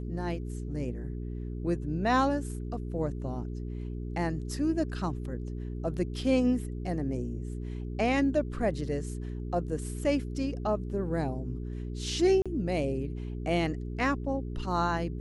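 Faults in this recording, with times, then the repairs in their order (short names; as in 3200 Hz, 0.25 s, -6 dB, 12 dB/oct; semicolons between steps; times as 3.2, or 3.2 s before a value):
hum 60 Hz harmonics 7 -36 dBFS
12.42–12.46 gap 36 ms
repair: de-hum 60 Hz, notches 7; interpolate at 12.42, 36 ms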